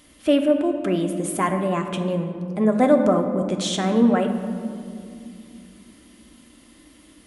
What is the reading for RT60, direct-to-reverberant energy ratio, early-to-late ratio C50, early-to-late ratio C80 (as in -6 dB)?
2.4 s, 4.0 dB, 7.0 dB, 8.5 dB